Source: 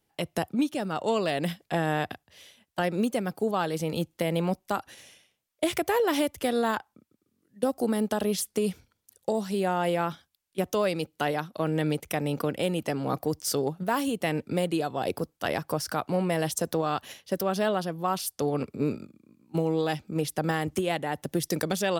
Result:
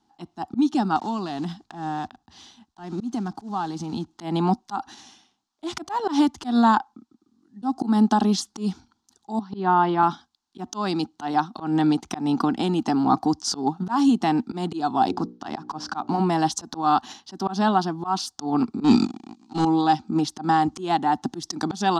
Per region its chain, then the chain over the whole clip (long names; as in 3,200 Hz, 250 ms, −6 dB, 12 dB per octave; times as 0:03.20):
0:00.96–0:04.08: one scale factor per block 5 bits + low-shelf EQ 140 Hz +11 dB + downward compressor 2.5 to 1, threshold −35 dBFS
0:09.39–0:10.03: noise gate −30 dBFS, range −12 dB + loudspeaker in its box 110–4,300 Hz, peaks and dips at 730 Hz −4 dB, 1,100 Hz +4 dB, 2,600 Hz −4 dB, 4,000 Hz −4 dB
0:15.08–0:16.20: running median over 5 samples + mains-hum notches 60/120/180/240/300/360/420/480/540/600 Hz
0:18.84–0:19.65: flat-topped bell 4,700 Hz +12.5 dB 2.4 octaves + leveller curve on the samples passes 3
whole clip: drawn EQ curve 150 Hz 0 dB, 240 Hz +14 dB, 360 Hz +8 dB, 540 Hz −16 dB, 780 Hz +15 dB, 1,400 Hz +7 dB, 2,200 Hz −6 dB, 4,100 Hz +8 dB, 6,600 Hz +5 dB, 15,000 Hz −27 dB; volume swells 149 ms